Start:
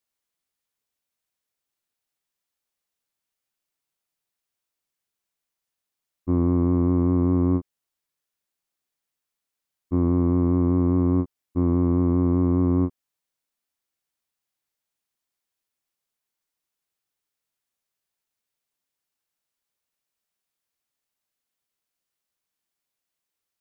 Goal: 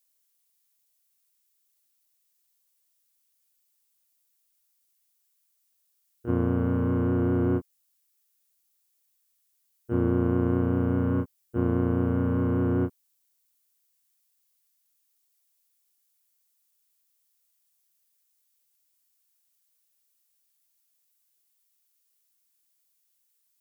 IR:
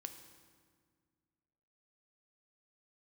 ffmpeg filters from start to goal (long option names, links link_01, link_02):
-filter_complex "[0:a]crystalizer=i=5:c=0,asplit=2[link_01][link_02];[link_02]asetrate=58866,aresample=44100,atempo=0.749154,volume=-2dB[link_03];[link_01][link_03]amix=inputs=2:normalize=0,volume=-6dB"